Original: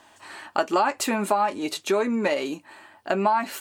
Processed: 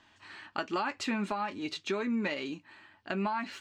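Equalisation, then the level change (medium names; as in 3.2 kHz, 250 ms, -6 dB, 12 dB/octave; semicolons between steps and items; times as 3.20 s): distance through air 170 m; peaking EQ 630 Hz -14 dB 2.2 oct; 0.0 dB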